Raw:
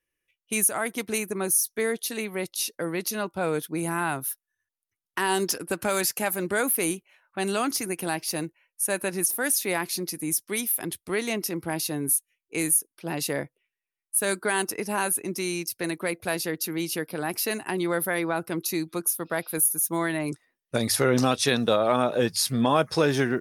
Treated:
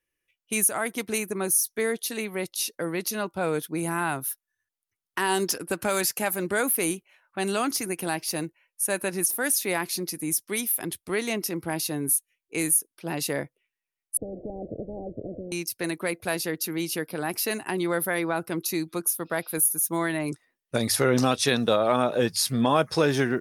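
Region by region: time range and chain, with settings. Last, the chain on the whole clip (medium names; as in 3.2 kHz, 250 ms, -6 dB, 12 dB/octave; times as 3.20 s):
14.17–15.52 s: zero-crossing glitches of -22.5 dBFS + steep low-pass 580 Hz 96 dB/octave + spectrum-flattening compressor 10:1
whole clip: none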